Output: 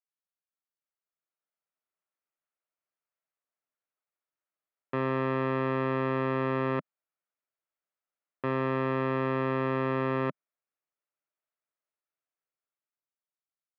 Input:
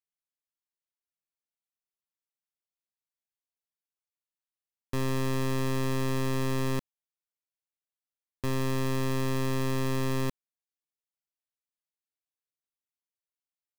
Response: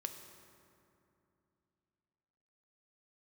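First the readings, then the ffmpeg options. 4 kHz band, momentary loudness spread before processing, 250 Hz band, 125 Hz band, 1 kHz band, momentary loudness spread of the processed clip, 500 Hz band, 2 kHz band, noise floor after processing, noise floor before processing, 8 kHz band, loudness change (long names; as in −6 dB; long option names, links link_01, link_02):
−9.0 dB, 4 LU, 0.0 dB, −3.5 dB, +5.5 dB, 4 LU, +4.0 dB, +3.0 dB, below −85 dBFS, below −85 dBFS, below −30 dB, +1.0 dB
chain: -af "dynaudnorm=framelen=190:gausssize=13:maxgain=8dB,highpass=frequency=150:width=0.5412,highpass=frequency=150:width=1.3066,equalizer=frequency=220:width_type=q:width=4:gain=-9,equalizer=frequency=610:width_type=q:width=4:gain=6,equalizer=frequency=1300:width_type=q:width=4:gain=6,lowpass=frequency=2500:width=0.5412,lowpass=frequency=2500:width=1.3066,volume=-5dB"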